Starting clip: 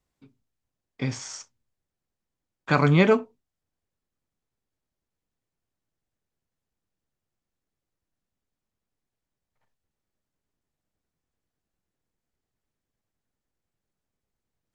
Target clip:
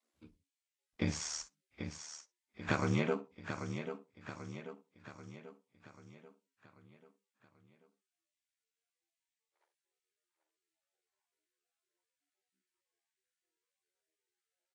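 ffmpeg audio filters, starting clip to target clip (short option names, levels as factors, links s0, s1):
-filter_complex "[0:a]acompressor=threshold=0.0562:ratio=16,aeval=exprs='val(0)*sin(2*PI*38*n/s)':c=same,asplit=2[s0][s1];[s1]aecho=0:1:788|1576|2364|3152|3940|4728:0.376|0.199|0.106|0.056|0.0297|0.0157[s2];[s0][s2]amix=inputs=2:normalize=0" -ar 32000 -c:a libvorbis -b:a 32k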